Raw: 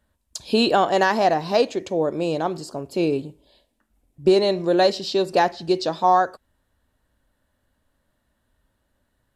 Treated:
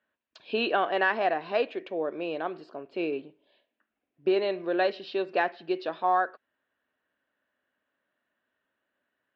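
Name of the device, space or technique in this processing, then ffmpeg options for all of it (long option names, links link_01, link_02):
phone earpiece: -af "highpass=370,equalizer=frequency=530:width_type=q:width=4:gain=-3,equalizer=frequency=880:width_type=q:width=4:gain=-6,equalizer=frequency=1600:width_type=q:width=4:gain=4,equalizer=frequency=2600:width_type=q:width=4:gain=4,lowpass=frequency=3100:width=0.5412,lowpass=frequency=3100:width=1.3066,volume=-5dB"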